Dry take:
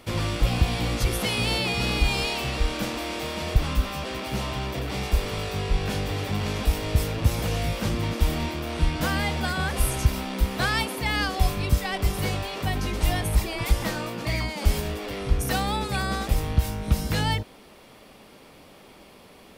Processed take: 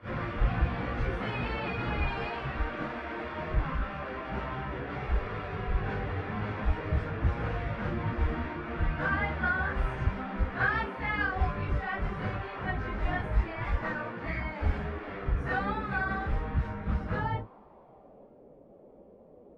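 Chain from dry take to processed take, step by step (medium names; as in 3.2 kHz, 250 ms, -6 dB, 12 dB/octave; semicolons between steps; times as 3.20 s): phase randomisation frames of 100 ms; low-pass sweep 1.6 kHz -> 530 Hz, 16.91–18.46 s; trim -6.5 dB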